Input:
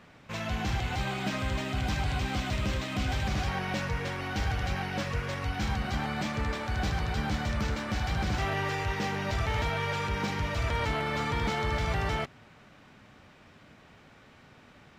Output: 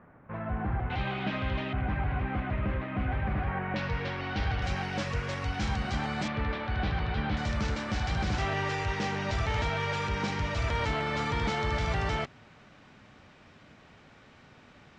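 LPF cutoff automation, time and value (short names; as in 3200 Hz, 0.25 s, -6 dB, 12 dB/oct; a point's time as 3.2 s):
LPF 24 dB/oct
1600 Hz
from 0.9 s 3500 Hz
from 1.73 s 2100 Hz
from 3.76 s 4600 Hz
from 4.62 s 8200 Hz
from 6.28 s 3800 Hz
from 7.37 s 7700 Hz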